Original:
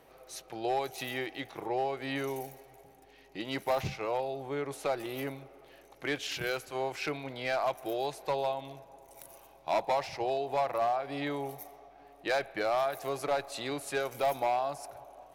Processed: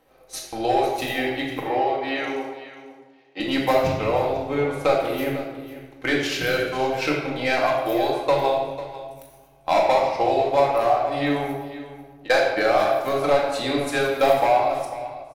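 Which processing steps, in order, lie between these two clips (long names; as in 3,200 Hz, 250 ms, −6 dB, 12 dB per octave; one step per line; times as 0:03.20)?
noise gate −45 dBFS, range −10 dB
0:11.53–0:12.30: downward compressor 10 to 1, threshold −54 dBFS, peak gain reduction 22.5 dB
transient designer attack +5 dB, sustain −10 dB
0:01.60–0:03.40: band-pass filter 380–4,500 Hz
single-tap delay 496 ms −15 dB
convolution reverb RT60 1.2 s, pre-delay 4 ms, DRR −3 dB
level +5 dB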